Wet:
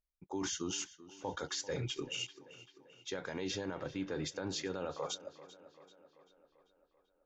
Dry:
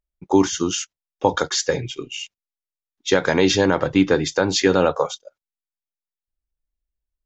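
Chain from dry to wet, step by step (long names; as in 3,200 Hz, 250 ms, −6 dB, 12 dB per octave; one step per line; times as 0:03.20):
reversed playback
downward compressor 6 to 1, threshold −25 dBFS, peak gain reduction 14.5 dB
reversed playback
brickwall limiter −21.5 dBFS, peak gain reduction 7.5 dB
tape delay 389 ms, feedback 62%, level −15 dB, low-pass 4,700 Hz
level −7 dB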